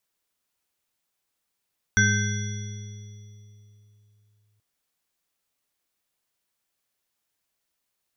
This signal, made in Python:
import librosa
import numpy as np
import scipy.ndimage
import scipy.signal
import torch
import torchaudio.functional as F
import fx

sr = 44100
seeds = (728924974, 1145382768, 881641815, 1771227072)

y = fx.additive_free(sr, length_s=2.63, hz=105.0, level_db=-20.5, upper_db=(-4.0, -16.0, 4.0, -9.0, -11.5, -4.0), decay_s=3.44, upper_decays_s=(2.34, 2.85, 1.05, 1.86, 2.46, 2.16), upper_hz=(204.0, 413.0, 1550.0, 2070.0, 3400.0, 5840.0))